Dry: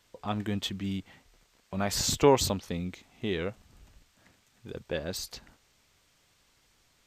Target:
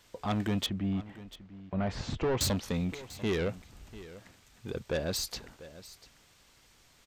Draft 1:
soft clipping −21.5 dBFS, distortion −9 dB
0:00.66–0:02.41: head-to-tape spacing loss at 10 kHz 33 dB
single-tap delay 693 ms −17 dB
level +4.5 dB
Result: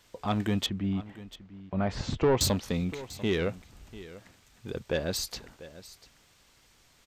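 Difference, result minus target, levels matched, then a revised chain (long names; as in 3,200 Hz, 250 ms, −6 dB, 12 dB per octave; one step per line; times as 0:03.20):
soft clipping: distortion −4 dB
soft clipping −29 dBFS, distortion −4 dB
0:00.66–0:02.41: head-to-tape spacing loss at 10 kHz 33 dB
single-tap delay 693 ms −17 dB
level +4.5 dB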